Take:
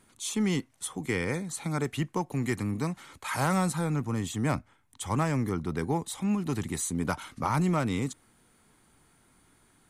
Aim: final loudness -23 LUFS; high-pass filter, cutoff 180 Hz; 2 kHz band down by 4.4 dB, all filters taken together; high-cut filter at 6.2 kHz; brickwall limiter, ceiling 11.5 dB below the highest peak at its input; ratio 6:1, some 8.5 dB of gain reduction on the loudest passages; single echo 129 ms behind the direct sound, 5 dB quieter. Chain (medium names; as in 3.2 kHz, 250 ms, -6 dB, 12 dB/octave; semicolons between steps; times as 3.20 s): high-pass 180 Hz; low-pass 6.2 kHz; peaking EQ 2 kHz -5.5 dB; compression 6:1, threshold -34 dBFS; peak limiter -34 dBFS; delay 129 ms -5 dB; trim +19 dB